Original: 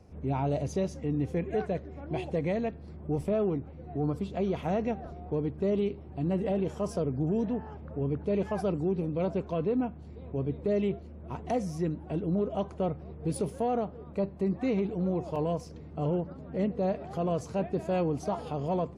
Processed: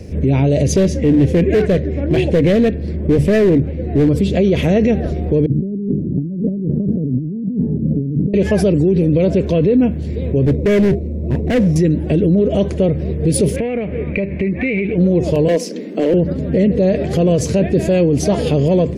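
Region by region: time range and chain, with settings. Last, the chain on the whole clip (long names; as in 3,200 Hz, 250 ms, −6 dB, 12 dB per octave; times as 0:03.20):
0:00.74–0:04.09: high-shelf EQ 4,600 Hz −8.5 dB + mains-hum notches 50/100/150 Hz + gain into a clipping stage and back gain 28.5 dB
0:05.46–0:08.34: flat-topped band-pass 200 Hz, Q 1.2 + compressor whose output falls as the input rises −42 dBFS
0:10.45–0:11.76: variable-slope delta modulation 64 kbit/s + moving average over 28 samples + hard clipping −33.5 dBFS
0:13.56–0:14.98: low-pass with resonance 2,300 Hz, resonance Q 8.6 + downward compressor 8 to 1, threshold −38 dBFS
0:15.48–0:16.14: Butterworth high-pass 190 Hz 72 dB per octave + hard clipping −27 dBFS
whole clip: flat-topped bell 1,000 Hz −15 dB 1.2 octaves; boost into a limiter +29 dB; level −5.5 dB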